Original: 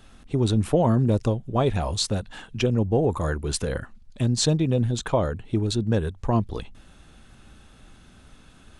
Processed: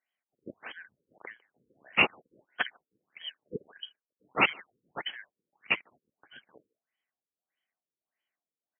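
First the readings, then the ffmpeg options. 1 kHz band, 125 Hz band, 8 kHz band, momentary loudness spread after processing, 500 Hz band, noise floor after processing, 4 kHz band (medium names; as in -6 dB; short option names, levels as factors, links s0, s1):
-6.5 dB, -30.0 dB, under -40 dB, 23 LU, -17.5 dB, under -85 dBFS, -4.5 dB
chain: -filter_complex "[0:a]afftfilt=real='real(if(lt(b,272),68*(eq(floor(b/68),0)*3+eq(floor(b/68),1)*2+eq(floor(b/68),2)*1+eq(floor(b/68),3)*0)+mod(b,68),b),0)':imag='imag(if(lt(b,272),68*(eq(floor(b/68),0)*3+eq(floor(b/68),1)*2+eq(floor(b/68),2)*1+eq(floor(b/68),3)*0)+mod(b,68),b),0)':win_size=2048:overlap=0.75,highpass=230,agate=range=0.0282:threshold=0.0112:ratio=16:detection=peak,asplit=2[s0][s1];[s1]adelay=150,highpass=300,lowpass=3400,asoftclip=type=hard:threshold=0.119,volume=0.0501[s2];[s0][s2]amix=inputs=2:normalize=0,afftfilt=real='re*lt(b*sr/1024,510*pow(3400/510,0.5+0.5*sin(2*PI*1.6*pts/sr)))':imag='im*lt(b*sr/1024,510*pow(3400/510,0.5+0.5*sin(2*PI*1.6*pts/sr)))':win_size=1024:overlap=0.75,volume=2"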